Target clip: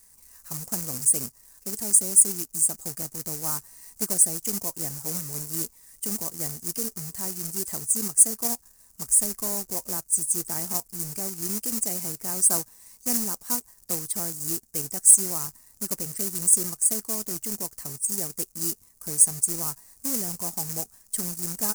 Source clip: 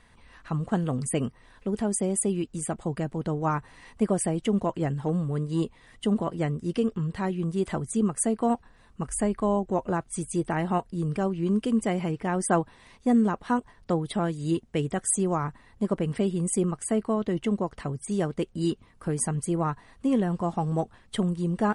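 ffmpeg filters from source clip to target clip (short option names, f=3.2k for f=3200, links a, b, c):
-af "acrusher=bits=2:mode=log:mix=0:aa=0.000001,aexciter=amount=9.4:drive=8.8:freq=5.2k,volume=-11.5dB"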